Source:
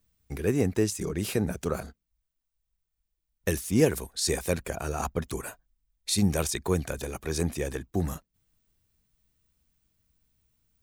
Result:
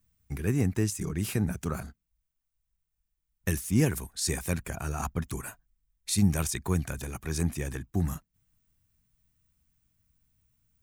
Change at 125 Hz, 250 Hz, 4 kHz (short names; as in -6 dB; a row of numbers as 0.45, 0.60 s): +2.0, -1.0, -4.0 dB